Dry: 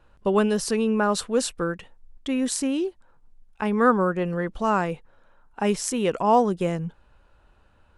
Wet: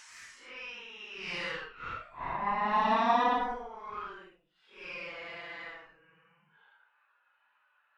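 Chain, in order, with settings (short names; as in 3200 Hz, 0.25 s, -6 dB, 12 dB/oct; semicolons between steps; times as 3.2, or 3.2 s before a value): Butterworth band-pass 1700 Hz, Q 1.1; added harmonics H 3 -14 dB, 8 -27 dB, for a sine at -12 dBFS; Paulstretch 6.3×, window 0.05 s, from 5.85; gain +6 dB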